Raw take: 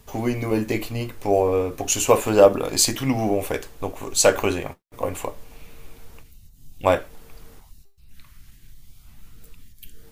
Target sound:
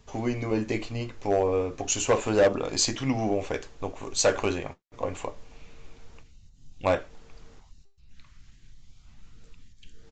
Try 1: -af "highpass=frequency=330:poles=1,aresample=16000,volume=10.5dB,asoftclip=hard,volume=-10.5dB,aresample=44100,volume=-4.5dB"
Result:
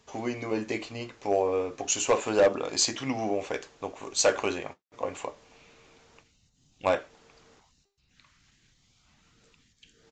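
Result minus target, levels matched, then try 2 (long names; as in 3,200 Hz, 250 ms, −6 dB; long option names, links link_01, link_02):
250 Hz band −2.5 dB
-af "aresample=16000,volume=10.5dB,asoftclip=hard,volume=-10.5dB,aresample=44100,volume=-4.5dB"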